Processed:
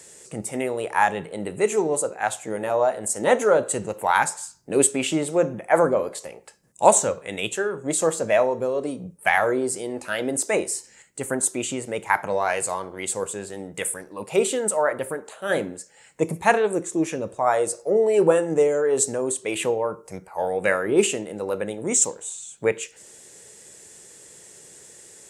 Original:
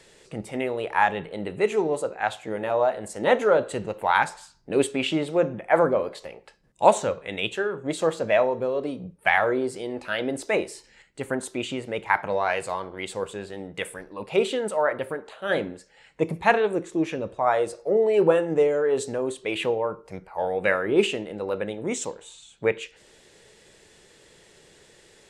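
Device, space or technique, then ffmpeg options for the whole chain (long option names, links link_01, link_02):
budget condenser microphone: -af "highpass=76,highshelf=frequency=5400:width_type=q:width=1.5:gain=11.5,volume=1.5dB"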